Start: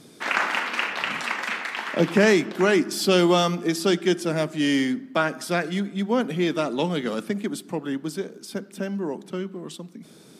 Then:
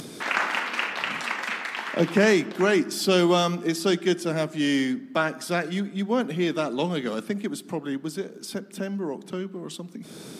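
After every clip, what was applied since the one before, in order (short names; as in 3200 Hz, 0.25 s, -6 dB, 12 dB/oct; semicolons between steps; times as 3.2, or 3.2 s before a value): upward compressor, threshold -28 dBFS; gain -1.5 dB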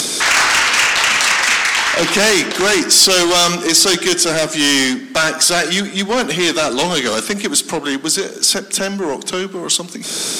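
overdrive pedal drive 26 dB, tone 7900 Hz, clips at -6.5 dBFS; bell 7300 Hz +12.5 dB 1.9 oct; gain -1.5 dB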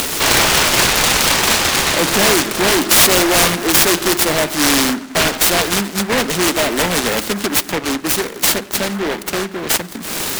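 noise-modulated delay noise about 1200 Hz, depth 0.19 ms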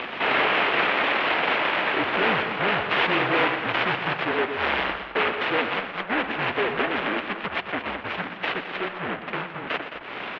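loudspeakers at several distances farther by 41 m -11 dB, 74 m -11 dB; mistuned SSB -210 Hz 520–3100 Hz; gain -5.5 dB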